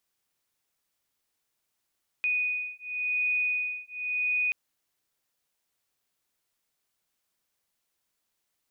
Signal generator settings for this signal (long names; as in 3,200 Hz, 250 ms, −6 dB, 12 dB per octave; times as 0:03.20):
two tones that beat 2,480 Hz, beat 0.92 Hz, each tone −29.5 dBFS 2.28 s